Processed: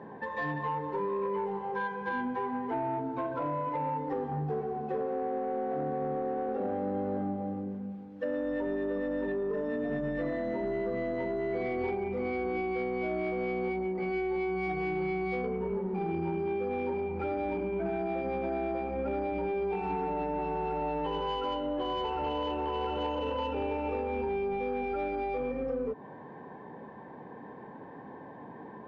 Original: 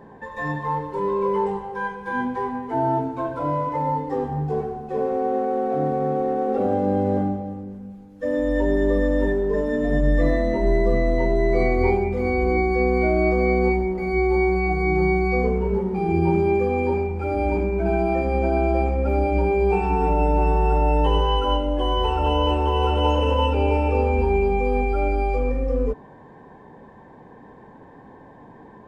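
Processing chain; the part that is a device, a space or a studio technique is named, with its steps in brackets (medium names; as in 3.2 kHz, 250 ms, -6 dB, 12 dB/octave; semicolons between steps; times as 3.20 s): AM radio (band-pass 140–3300 Hz; compression 5:1, threshold -29 dBFS, peak gain reduction 11.5 dB; saturation -23.5 dBFS, distortion -22 dB)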